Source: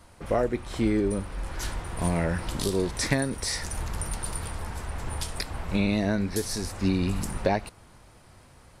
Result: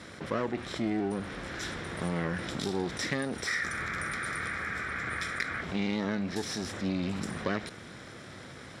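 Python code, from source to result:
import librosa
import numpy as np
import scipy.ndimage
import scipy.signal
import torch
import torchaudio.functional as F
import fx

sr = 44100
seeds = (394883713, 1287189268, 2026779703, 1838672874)

y = fx.lower_of_two(x, sr, delay_ms=0.55)
y = fx.bandpass_edges(y, sr, low_hz=160.0, high_hz=5700.0)
y = fx.spec_box(y, sr, start_s=3.46, length_s=2.15, low_hz=1100.0, high_hz=2500.0, gain_db=11)
y = fx.env_flatten(y, sr, amount_pct=50)
y = y * 10.0 ** (-6.0 / 20.0)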